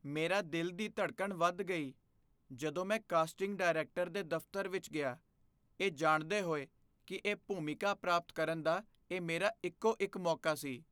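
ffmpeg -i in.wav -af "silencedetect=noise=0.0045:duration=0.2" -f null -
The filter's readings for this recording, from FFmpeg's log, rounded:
silence_start: 1.90
silence_end: 2.51 | silence_duration: 0.61
silence_start: 5.15
silence_end: 5.80 | silence_duration: 0.65
silence_start: 6.64
silence_end: 7.08 | silence_duration: 0.44
silence_start: 8.81
silence_end: 9.11 | silence_duration: 0.30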